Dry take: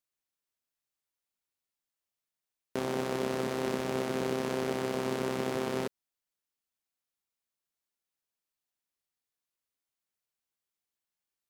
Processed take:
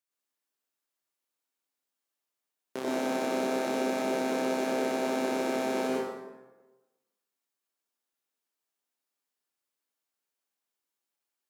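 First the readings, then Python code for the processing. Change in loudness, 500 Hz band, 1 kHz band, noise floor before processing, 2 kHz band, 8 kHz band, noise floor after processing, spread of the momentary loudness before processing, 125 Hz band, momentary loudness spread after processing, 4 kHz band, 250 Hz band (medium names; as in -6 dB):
+3.0 dB, +2.5 dB, +4.5 dB, under -85 dBFS, +3.5 dB, +3.0 dB, under -85 dBFS, 3 LU, -10.5 dB, 8 LU, +1.0 dB, +3.5 dB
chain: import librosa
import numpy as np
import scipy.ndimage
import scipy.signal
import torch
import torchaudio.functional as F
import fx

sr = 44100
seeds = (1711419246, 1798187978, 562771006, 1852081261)

y = scipy.signal.sosfilt(scipy.signal.butter(2, 220.0, 'highpass', fs=sr, output='sos'), x)
y = fx.rev_plate(y, sr, seeds[0], rt60_s=1.2, hf_ratio=0.6, predelay_ms=80, drr_db=-4.5)
y = F.gain(torch.from_numpy(y), -2.5).numpy()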